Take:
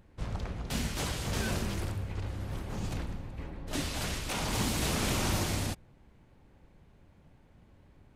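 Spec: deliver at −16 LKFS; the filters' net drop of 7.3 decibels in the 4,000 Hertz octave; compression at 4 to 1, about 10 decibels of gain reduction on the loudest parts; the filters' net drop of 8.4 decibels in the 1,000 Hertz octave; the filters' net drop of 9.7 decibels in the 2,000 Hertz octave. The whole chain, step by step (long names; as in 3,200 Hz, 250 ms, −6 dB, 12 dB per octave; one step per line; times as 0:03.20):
parametric band 1,000 Hz −9 dB
parametric band 2,000 Hz −8 dB
parametric band 4,000 Hz −6.5 dB
downward compressor 4 to 1, threshold −40 dBFS
level +28 dB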